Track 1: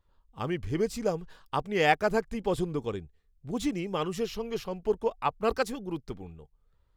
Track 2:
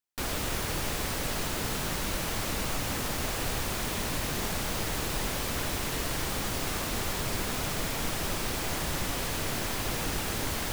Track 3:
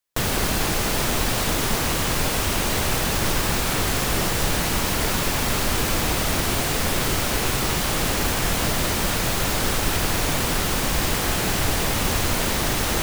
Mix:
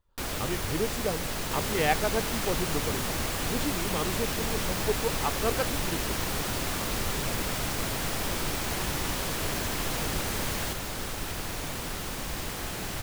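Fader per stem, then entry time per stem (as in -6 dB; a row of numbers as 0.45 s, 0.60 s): -2.5 dB, -1.0 dB, -12.0 dB; 0.00 s, 0.00 s, 1.35 s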